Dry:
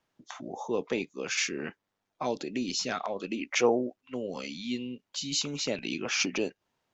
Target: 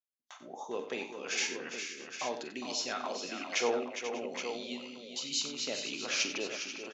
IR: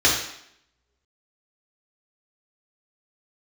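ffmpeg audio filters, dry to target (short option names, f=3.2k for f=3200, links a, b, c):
-filter_complex "[0:a]agate=range=-34dB:threshold=-43dB:ratio=16:detection=peak,highpass=f=610:p=1,aecho=1:1:45|92|407|487|592|819:0.282|0.266|0.376|0.251|0.119|0.376,asplit=2[a][b];[1:a]atrim=start_sample=2205,lowpass=4.2k[c];[b][c]afir=irnorm=-1:irlink=0,volume=-30dB[d];[a][d]amix=inputs=2:normalize=0,volume=-3.5dB"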